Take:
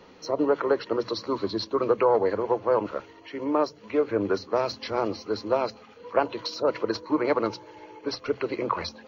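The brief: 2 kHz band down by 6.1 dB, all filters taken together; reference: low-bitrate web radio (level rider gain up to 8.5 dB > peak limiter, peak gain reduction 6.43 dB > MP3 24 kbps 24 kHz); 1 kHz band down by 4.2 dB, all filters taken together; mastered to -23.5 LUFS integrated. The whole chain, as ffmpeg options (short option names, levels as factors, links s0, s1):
-af "equalizer=f=1000:t=o:g=-3.5,equalizer=f=2000:t=o:g=-7,dynaudnorm=m=2.66,alimiter=limit=0.126:level=0:latency=1,volume=2.37" -ar 24000 -c:a libmp3lame -b:a 24k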